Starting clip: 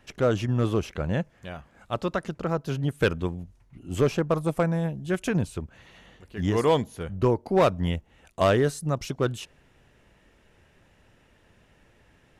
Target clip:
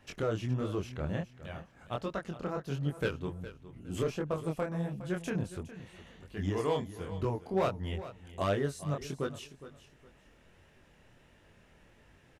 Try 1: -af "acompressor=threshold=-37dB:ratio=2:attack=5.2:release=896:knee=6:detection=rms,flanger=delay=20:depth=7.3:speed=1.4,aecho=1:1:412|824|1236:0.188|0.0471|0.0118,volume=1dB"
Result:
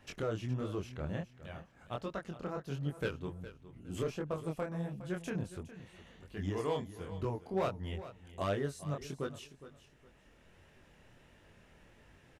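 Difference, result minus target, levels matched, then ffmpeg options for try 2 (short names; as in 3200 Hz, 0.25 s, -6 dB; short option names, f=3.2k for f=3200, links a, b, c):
compressor: peak gain reduction +4 dB
-af "acompressor=threshold=-29.5dB:ratio=2:attack=5.2:release=896:knee=6:detection=rms,flanger=delay=20:depth=7.3:speed=1.4,aecho=1:1:412|824|1236:0.188|0.0471|0.0118,volume=1dB"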